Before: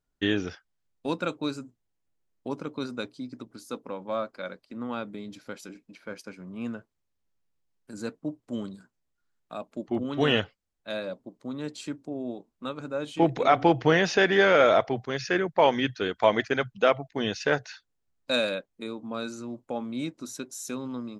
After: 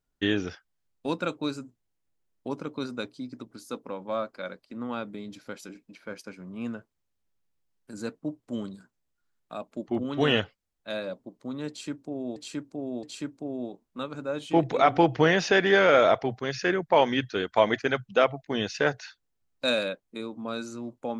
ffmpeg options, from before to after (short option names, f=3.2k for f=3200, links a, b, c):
-filter_complex "[0:a]asplit=3[a][b][c];[a]atrim=end=12.362[d];[b]atrim=start=11.688:end=12.362[e];[c]atrim=start=11.688[f];[d][e]acrossfade=d=0.004:c1=hsin:c2=hsin[g];[g][f]acrossfade=d=0.004:c1=hsin:c2=hsin"